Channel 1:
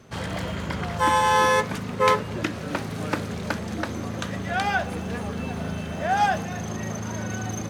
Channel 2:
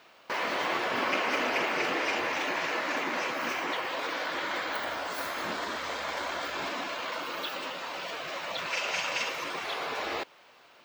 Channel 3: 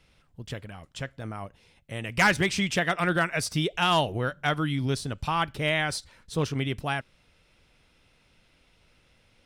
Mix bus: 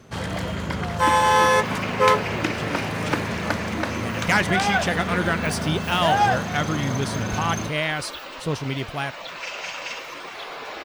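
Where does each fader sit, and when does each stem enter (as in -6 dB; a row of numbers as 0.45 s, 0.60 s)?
+2.0 dB, -1.0 dB, +1.0 dB; 0.00 s, 0.70 s, 2.10 s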